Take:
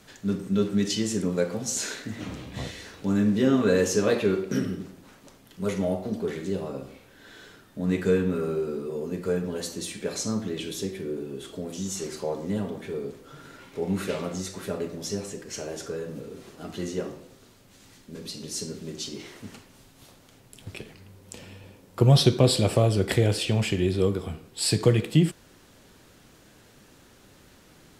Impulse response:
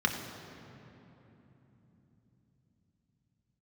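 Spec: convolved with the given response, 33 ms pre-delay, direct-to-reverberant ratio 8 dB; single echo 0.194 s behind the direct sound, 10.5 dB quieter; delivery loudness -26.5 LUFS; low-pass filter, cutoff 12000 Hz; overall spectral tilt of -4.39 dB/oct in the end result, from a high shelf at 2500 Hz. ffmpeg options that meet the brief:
-filter_complex "[0:a]lowpass=12k,highshelf=f=2.5k:g=7.5,aecho=1:1:194:0.299,asplit=2[a][b];[1:a]atrim=start_sample=2205,adelay=33[c];[b][c]afir=irnorm=-1:irlink=0,volume=-18dB[d];[a][d]amix=inputs=2:normalize=0,volume=-2dB"

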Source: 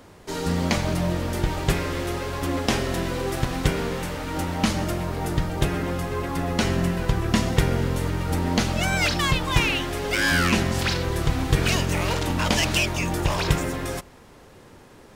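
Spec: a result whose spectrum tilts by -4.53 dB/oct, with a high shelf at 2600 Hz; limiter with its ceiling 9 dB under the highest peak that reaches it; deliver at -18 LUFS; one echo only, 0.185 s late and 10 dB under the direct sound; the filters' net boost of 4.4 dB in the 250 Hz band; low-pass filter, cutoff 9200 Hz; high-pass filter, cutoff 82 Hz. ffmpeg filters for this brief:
-af "highpass=82,lowpass=9.2k,equalizer=f=250:t=o:g=6,highshelf=f=2.6k:g=5,alimiter=limit=-11.5dB:level=0:latency=1,aecho=1:1:185:0.316,volume=5dB"

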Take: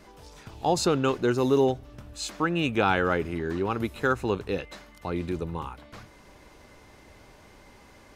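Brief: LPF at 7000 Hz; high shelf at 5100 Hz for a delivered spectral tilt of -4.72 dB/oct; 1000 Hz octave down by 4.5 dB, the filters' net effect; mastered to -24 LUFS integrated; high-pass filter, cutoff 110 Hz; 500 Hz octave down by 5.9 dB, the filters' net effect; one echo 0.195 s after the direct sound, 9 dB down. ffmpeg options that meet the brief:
-af "highpass=110,lowpass=7k,equalizer=f=500:t=o:g=-7,equalizer=f=1k:t=o:g=-3.5,highshelf=f=5.1k:g=-8,aecho=1:1:195:0.355,volume=6.5dB"

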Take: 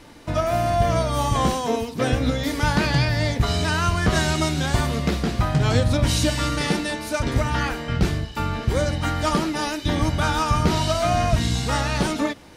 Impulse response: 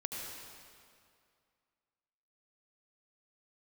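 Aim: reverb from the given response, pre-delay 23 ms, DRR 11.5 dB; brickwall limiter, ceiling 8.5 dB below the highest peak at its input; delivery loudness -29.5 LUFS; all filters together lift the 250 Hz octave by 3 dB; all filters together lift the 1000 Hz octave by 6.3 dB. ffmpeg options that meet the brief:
-filter_complex "[0:a]equalizer=f=250:t=o:g=3.5,equalizer=f=1k:t=o:g=8,alimiter=limit=-11dB:level=0:latency=1,asplit=2[a][b];[1:a]atrim=start_sample=2205,adelay=23[c];[b][c]afir=irnorm=-1:irlink=0,volume=-13dB[d];[a][d]amix=inputs=2:normalize=0,volume=-8.5dB"

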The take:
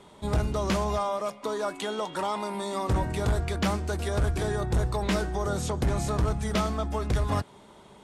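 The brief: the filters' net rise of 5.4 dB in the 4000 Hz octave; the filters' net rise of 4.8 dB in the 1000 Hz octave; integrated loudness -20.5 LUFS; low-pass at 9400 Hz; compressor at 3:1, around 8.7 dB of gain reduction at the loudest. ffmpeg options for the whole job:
-af "lowpass=9.4k,equalizer=f=1k:t=o:g=5.5,equalizer=f=4k:t=o:g=6.5,acompressor=threshold=-33dB:ratio=3,volume=14dB"

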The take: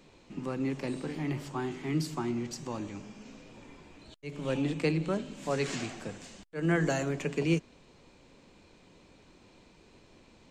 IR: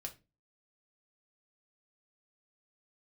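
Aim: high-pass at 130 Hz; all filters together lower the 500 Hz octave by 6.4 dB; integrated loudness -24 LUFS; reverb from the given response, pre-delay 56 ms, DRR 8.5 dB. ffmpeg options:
-filter_complex "[0:a]highpass=130,equalizer=f=500:t=o:g=-8.5,asplit=2[a][b];[1:a]atrim=start_sample=2205,adelay=56[c];[b][c]afir=irnorm=-1:irlink=0,volume=-5.5dB[d];[a][d]amix=inputs=2:normalize=0,volume=11dB"

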